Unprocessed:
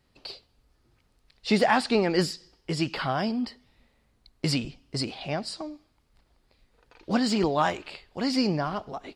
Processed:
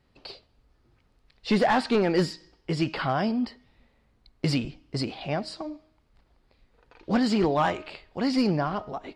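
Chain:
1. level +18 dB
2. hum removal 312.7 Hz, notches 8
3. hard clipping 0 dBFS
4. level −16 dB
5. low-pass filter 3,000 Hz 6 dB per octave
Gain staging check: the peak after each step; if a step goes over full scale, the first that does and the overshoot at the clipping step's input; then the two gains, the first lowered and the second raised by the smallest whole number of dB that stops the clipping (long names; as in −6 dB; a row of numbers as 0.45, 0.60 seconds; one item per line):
+9.5, +9.5, 0.0, −16.0, −16.0 dBFS
step 1, 9.5 dB
step 1 +8 dB, step 4 −6 dB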